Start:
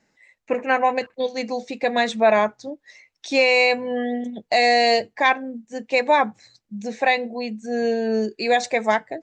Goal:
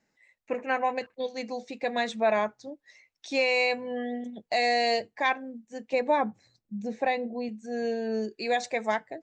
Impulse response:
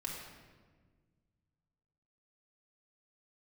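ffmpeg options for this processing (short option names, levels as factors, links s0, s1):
-filter_complex "[0:a]asettb=1/sr,asplit=3[s0][s1][s2];[s0]atrim=end=5.934[s3];[s1]atrim=start=5.93:end=7.49,asetpts=PTS-STARTPTS,afade=t=in:d=0.004:c=qsin,afade=t=out:st=1.556:d=0.004:c=qsin,tiltshelf=f=850:g=6[s4];[s2]atrim=start=7.486[s5];[s3][s4]acrossfade=d=0.004:c1=hsin:c2=qsin[s6];[s6][s5]acrossfade=d=0.004:c1=qsin:c2=hsin,volume=0.398"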